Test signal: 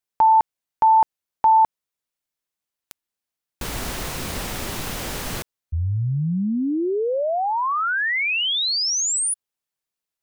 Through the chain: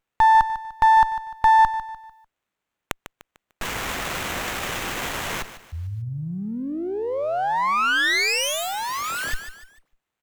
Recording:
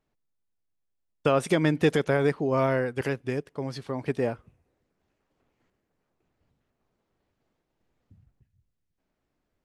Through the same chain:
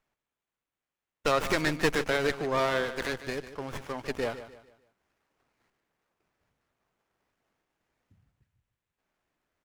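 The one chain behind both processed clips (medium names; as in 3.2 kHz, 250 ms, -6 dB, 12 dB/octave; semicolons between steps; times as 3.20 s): tilt shelf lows -8 dB, about 820 Hz; on a send: feedback delay 149 ms, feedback 37%, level -13 dB; on the sum: sliding maximum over 9 samples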